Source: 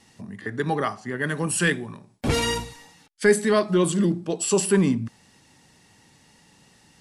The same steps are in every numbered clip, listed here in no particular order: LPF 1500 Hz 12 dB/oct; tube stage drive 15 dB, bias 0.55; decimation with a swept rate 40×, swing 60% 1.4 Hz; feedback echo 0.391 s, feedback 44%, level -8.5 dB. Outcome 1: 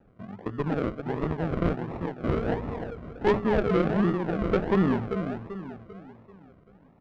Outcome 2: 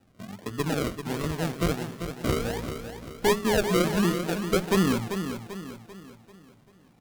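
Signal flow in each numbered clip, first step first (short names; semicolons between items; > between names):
feedback echo > decimation with a swept rate > LPF > tube stage; LPF > decimation with a swept rate > tube stage > feedback echo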